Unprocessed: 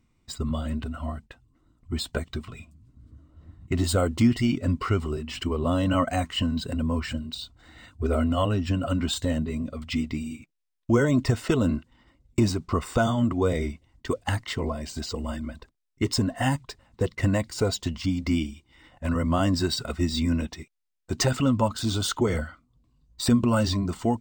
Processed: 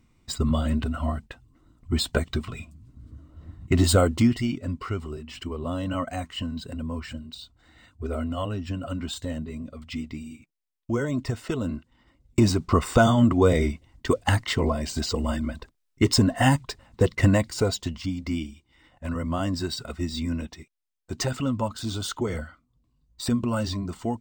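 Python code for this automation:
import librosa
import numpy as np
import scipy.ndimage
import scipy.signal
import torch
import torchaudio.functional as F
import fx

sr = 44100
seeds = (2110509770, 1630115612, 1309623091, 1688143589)

y = fx.gain(x, sr, db=fx.line((3.94, 5.0), (4.62, -5.5), (11.72, -5.5), (12.63, 5.0), (17.22, 5.0), (18.16, -4.0)))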